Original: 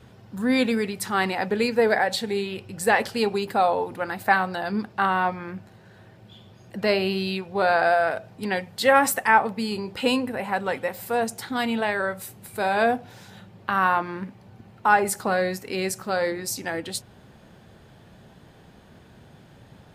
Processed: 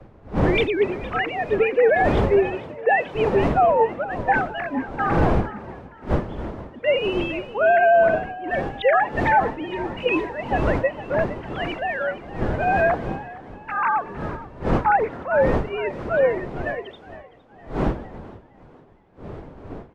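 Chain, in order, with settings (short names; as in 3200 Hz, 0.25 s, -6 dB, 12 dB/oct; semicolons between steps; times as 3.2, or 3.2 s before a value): sine-wave speech; wind noise 490 Hz -31 dBFS; limiter -15.5 dBFS, peak gain reduction 11.5 dB; on a send: frequency-shifting echo 0.462 s, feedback 59%, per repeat +54 Hz, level -12.5 dB; on the sum: three-band expander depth 70%; gain +4 dB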